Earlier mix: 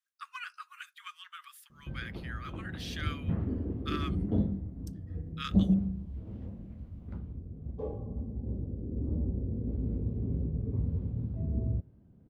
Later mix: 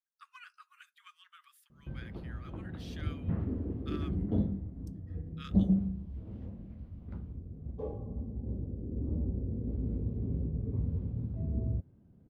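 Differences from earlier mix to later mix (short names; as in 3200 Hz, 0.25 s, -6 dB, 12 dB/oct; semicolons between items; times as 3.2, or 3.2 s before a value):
speech -10.5 dB; reverb: off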